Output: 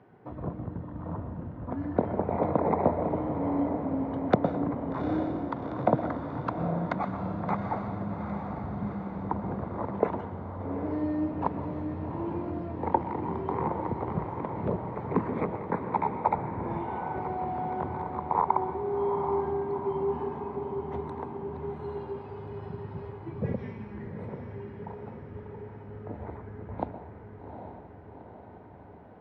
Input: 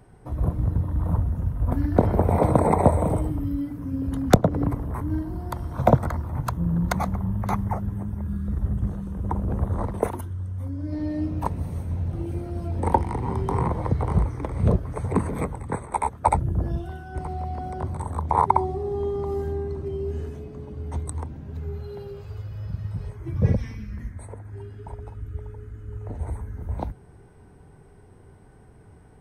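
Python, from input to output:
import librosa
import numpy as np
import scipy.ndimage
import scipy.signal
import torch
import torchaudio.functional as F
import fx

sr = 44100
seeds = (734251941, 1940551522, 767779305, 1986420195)

y = fx.rider(x, sr, range_db=3, speed_s=0.5)
y = fx.bandpass_edges(y, sr, low_hz=190.0, high_hz=3300.0)
y = fx.air_absorb(y, sr, metres=190.0)
y = fx.echo_diffused(y, sr, ms=795, feedback_pct=64, wet_db=-7.0)
y = fx.rev_plate(y, sr, seeds[0], rt60_s=0.66, hf_ratio=0.85, predelay_ms=105, drr_db=12.0)
y = y * librosa.db_to_amplitude(-2.5)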